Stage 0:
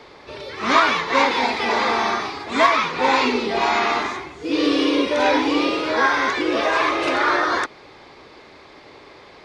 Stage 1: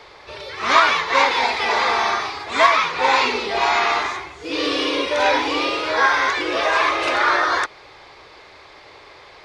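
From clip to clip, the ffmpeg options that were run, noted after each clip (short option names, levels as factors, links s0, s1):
-af "equalizer=f=230:t=o:w=1.4:g=-13,volume=1.33"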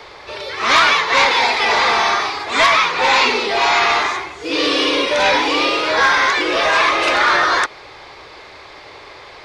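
-filter_complex "[0:a]acrossover=split=180|1900[s0][s1][s2];[s0]acompressor=threshold=0.002:ratio=6[s3];[s1]asoftclip=type=tanh:threshold=0.119[s4];[s3][s4][s2]amix=inputs=3:normalize=0,volume=2"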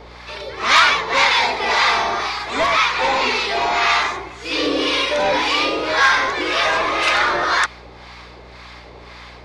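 -filter_complex "[0:a]acrossover=split=810[s0][s1];[s0]aeval=exprs='val(0)*(1-0.7/2+0.7/2*cos(2*PI*1.9*n/s))':c=same[s2];[s1]aeval=exprs='val(0)*(1-0.7/2-0.7/2*cos(2*PI*1.9*n/s))':c=same[s3];[s2][s3]amix=inputs=2:normalize=0,aeval=exprs='val(0)+0.00631*(sin(2*PI*60*n/s)+sin(2*PI*2*60*n/s)/2+sin(2*PI*3*60*n/s)/3+sin(2*PI*4*60*n/s)/4+sin(2*PI*5*60*n/s)/5)':c=same,volume=1.12"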